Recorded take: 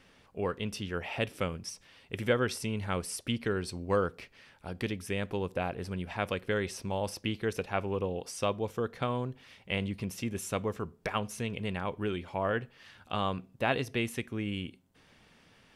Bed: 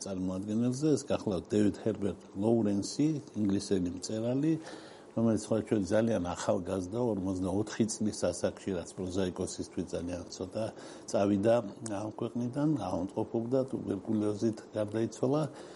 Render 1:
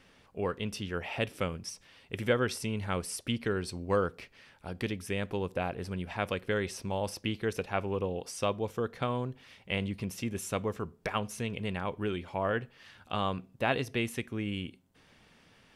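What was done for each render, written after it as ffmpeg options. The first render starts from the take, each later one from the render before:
-af anull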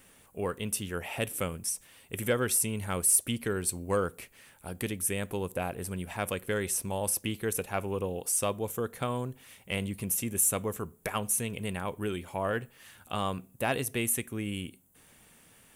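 -af "aexciter=amount=10.8:drive=3:freq=7.2k,asoftclip=type=tanh:threshold=-13.5dB"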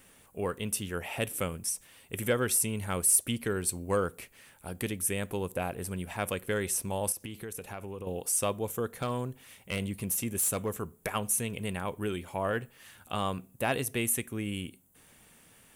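-filter_complex "[0:a]asettb=1/sr,asplit=3[a][b][c];[a]atrim=end=7.124[d];[b]atrim=start=7.12:end=8.07,asetpts=PTS-STARTPTS,afade=t=in:d=0.004:c=qsin,afade=t=out:st=0.946:d=0.004:c=qsin,acompressor=threshold=-36dB:ratio=6:attack=3.2:release=140:knee=1:detection=peak[e];[c]atrim=start=8.066[f];[d][e]acrossfade=d=0.004:c1=hsin:c2=qsin[g];[g][f]acrossfade=d=0.004:c1=qsin:c2=hsin,asettb=1/sr,asplit=3[h][i][j];[h]atrim=end=8.894[k];[i]atrim=start=8.89:end=10.7,asetpts=PTS-STARTPTS,afade=t=in:d=0.004:c=qsin,afade=t=out:st=1.806:d=0.004:c=qsin,volume=25dB,asoftclip=hard,volume=-25dB[l];[j]atrim=start=10.696[m];[k][l]acrossfade=d=0.004:c1=hsin:c2=qsin[n];[n][m]acrossfade=d=0.004:c1=qsin:c2=hsin"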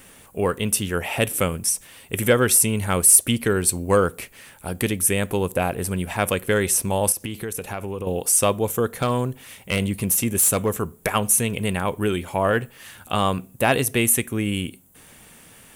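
-af "volume=10.5dB"

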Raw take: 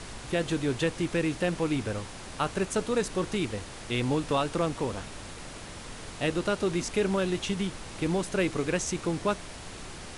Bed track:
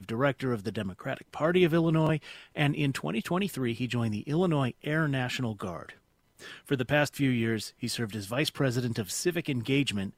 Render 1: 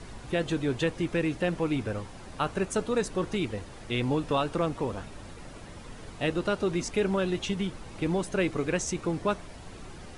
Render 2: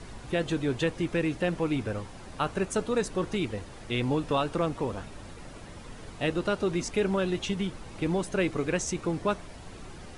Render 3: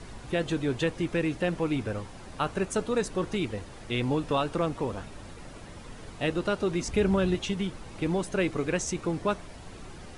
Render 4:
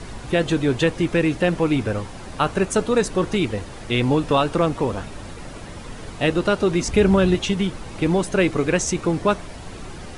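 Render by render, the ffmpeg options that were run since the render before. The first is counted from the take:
-af "afftdn=nr=9:nf=-43"
-af anull
-filter_complex "[0:a]asettb=1/sr,asplit=3[a][b][c];[a]atrim=end=6.884[d];[b]atrim=start=6.88:end=7.35,asetpts=PTS-STARTPTS,afade=t=in:d=0.004:c=qsin,afade=t=out:st=0.466:d=0.004:c=qsin,equalizer=f=71:t=o:w=2:g=13.5[e];[c]atrim=start=7.346[f];[d][e]acrossfade=d=0.004:c1=hsin:c2=qsin[g];[g][f]acrossfade=d=0.004:c1=qsin:c2=hsin"
-af "volume=8.5dB"

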